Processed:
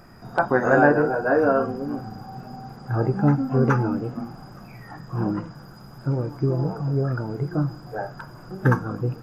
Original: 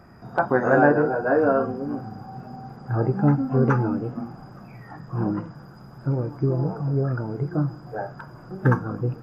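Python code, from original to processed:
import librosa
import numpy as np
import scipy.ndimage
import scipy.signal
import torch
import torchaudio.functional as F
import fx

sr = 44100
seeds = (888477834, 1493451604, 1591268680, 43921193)

y = fx.high_shelf(x, sr, hz=3100.0, db=9.5)
y = fx.dmg_noise_colour(y, sr, seeds[0], colour='brown', level_db=-54.0)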